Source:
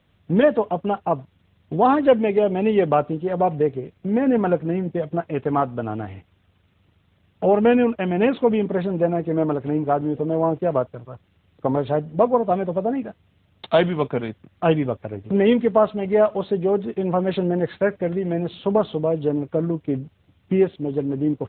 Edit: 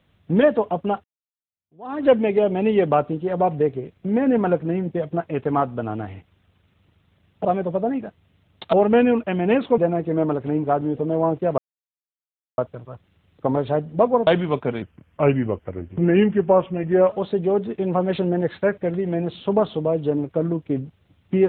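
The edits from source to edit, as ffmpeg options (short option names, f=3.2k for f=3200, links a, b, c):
-filter_complex "[0:a]asplit=9[a][b][c][d][e][f][g][h][i];[a]atrim=end=1.04,asetpts=PTS-STARTPTS,afade=t=out:st=1.036:d=0.004:c=hsin[j];[b]atrim=start=1.04:end=7.452,asetpts=PTS-STARTPTS,afade=t=in:d=1.01:c=exp[k];[c]atrim=start=12.468:end=13.752[l];[d]atrim=start=7.448:end=8.502[m];[e]atrim=start=8.978:end=10.78,asetpts=PTS-STARTPTS,afade=t=out:st=1.798:d=0.004:c=hsin,apad=pad_dur=1[n];[f]atrim=start=10.78:end=12.472,asetpts=PTS-STARTPTS,afade=t=in:d=0.004:c=hsin[o];[g]atrim=start=13.748:end=14.304[p];[h]atrim=start=14.3:end=16.28,asetpts=PTS-STARTPTS,asetrate=38367,aresample=44100[q];[i]atrim=start=16.276[r];[j][k]concat=n=2:v=0:a=1[s];[s][l]acrossfade=d=0.004:c1=hsin:c2=hsin[t];[t][m]acrossfade=d=0.004:c1=hsin:c2=hsin[u];[n][o]concat=n=2:v=0:a=1[v];[u][v]acrossfade=d=0.004:c1=hsin:c2=hsin[w];[w][p]acrossfade=d=0.004:c1=hsin:c2=hsin[x];[x][q]acrossfade=d=0.004:c1=hsin:c2=hsin[y];[y][r]acrossfade=d=0.004:c1=hsin:c2=hsin"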